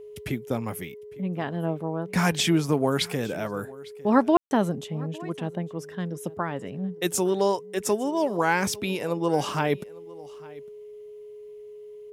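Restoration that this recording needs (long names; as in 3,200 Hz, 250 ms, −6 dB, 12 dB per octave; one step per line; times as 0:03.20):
notch filter 420 Hz, Q 30
ambience match 0:04.37–0:04.51
echo removal 855 ms −22 dB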